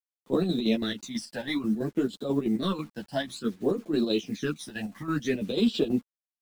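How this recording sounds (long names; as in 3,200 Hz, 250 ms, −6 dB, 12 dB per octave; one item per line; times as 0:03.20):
phaser sweep stages 12, 0.57 Hz, lowest notch 380–2,100 Hz
a quantiser's noise floor 10 bits, dither none
chopped level 6.1 Hz, depth 60%, duty 60%
a shimmering, thickened sound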